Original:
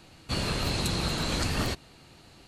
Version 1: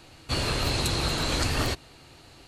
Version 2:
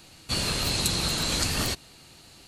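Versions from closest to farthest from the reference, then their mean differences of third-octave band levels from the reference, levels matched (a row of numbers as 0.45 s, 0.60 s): 1, 2; 1.0 dB, 3.5 dB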